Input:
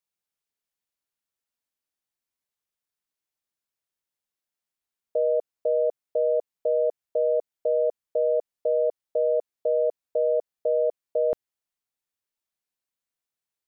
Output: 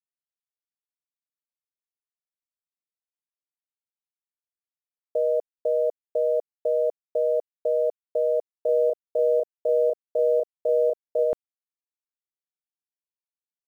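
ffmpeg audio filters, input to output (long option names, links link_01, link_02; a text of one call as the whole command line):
ffmpeg -i in.wav -filter_complex "[0:a]acrusher=bits=9:mix=0:aa=0.000001,asplit=3[link_01][link_02][link_03];[link_01]afade=type=out:start_time=8.52:duration=0.02[link_04];[link_02]asplit=2[link_05][link_06];[link_06]adelay=35,volume=-2dB[link_07];[link_05][link_07]amix=inputs=2:normalize=0,afade=type=in:start_time=8.52:duration=0.02,afade=type=out:start_time=11.23:duration=0.02[link_08];[link_03]afade=type=in:start_time=11.23:duration=0.02[link_09];[link_04][link_08][link_09]amix=inputs=3:normalize=0" out.wav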